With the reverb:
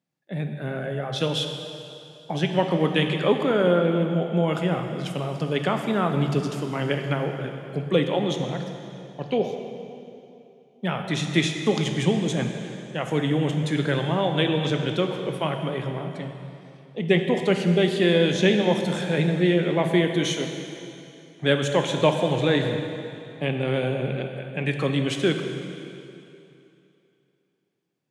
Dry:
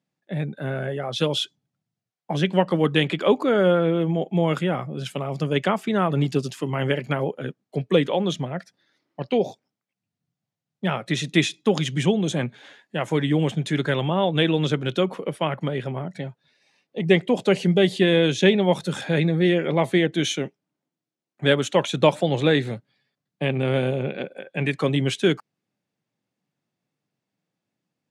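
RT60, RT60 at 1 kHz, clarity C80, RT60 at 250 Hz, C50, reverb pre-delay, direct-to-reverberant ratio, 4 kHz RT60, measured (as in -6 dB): 2.8 s, 2.8 s, 6.5 dB, 2.8 s, 5.5 dB, 8 ms, 4.5 dB, 2.6 s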